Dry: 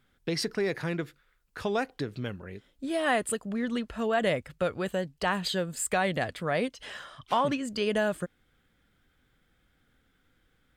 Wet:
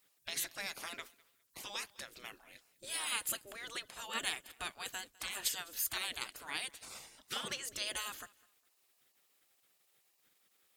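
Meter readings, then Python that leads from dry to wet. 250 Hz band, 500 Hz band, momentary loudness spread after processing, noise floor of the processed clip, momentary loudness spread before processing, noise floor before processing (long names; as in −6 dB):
−25.5 dB, −24.0 dB, 15 LU, −75 dBFS, 13 LU, −70 dBFS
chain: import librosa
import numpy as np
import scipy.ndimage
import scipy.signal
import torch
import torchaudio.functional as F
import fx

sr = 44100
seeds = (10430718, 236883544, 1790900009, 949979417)

y = F.preemphasis(torch.from_numpy(x), 0.8).numpy()
y = fx.spec_gate(y, sr, threshold_db=-15, keep='weak')
y = fx.echo_feedback(y, sr, ms=204, feedback_pct=27, wet_db=-23.5)
y = y * librosa.db_to_amplitude(9.0)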